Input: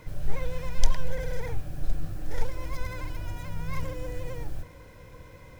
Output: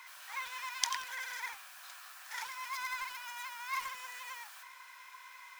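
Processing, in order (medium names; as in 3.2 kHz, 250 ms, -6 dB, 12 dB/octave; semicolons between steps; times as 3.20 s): Chebyshev high-pass 1 kHz, order 4; bit-crushed delay 89 ms, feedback 35%, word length 7-bit, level -11 dB; trim +4.5 dB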